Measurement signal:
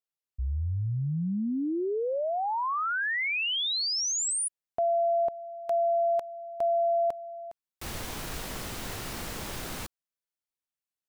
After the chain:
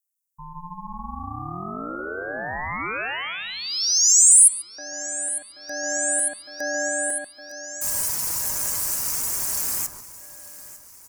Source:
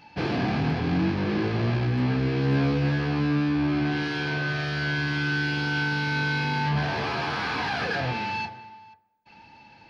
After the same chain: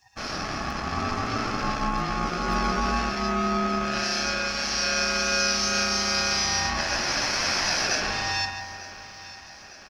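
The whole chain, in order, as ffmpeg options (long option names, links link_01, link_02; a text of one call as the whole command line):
ffmpeg -i in.wav -filter_complex "[0:a]asplit=2[link_01][link_02];[link_02]adelay=140,lowpass=frequency=1800:poles=1,volume=-4dB,asplit=2[link_03][link_04];[link_04]adelay=140,lowpass=frequency=1800:poles=1,volume=0.45,asplit=2[link_05][link_06];[link_06]adelay=140,lowpass=frequency=1800:poles=1,volume=0.45,asplit=2[link_07][link_08];[link_08]adelay=140,lowpass=frequency=1800:poles=1,volume=0.45,asplit=2[link_09][link_10];[link_10]adelay=140,lowpass=frequency=1800:poles=1,volume=0.45,asplit=2[link_11][link_12];[link_12]adelay=140,lowpass=frequency=1800:poles=1,volume=0.45[link_13];[link_03][link_05][link_07][link_09][link_11][link_13]amix=inputs=6:normalize=0[link_14];[link_01][link_14]amix=inputs=2:normalize=0,aeval=exprs='val(0)*sin(2*PI*440*n/s)':channel_layout=same,afftdn=noise_reduction=14:noise_floor=-44,tiltshelf=frequency=700:gain=-6,asplit=2[link_15][link_16];[link_16]aecho=0:1:901|1802|2703|3604|4505:0.133|0.0747|0.0418|0.0234|0.0131[link_17];[link_15][link_17]amix=inputs=2:normalize=0,aeval=exprs='val(0)*sin(2*PI*530*n/s)':channel_layout=same,aexciter=amount=14.9:drive=7.1:freq=5500,dynaudnorm=framelen=610:gausssize=3:maxgain=4dB,volume=-1dB" out.wav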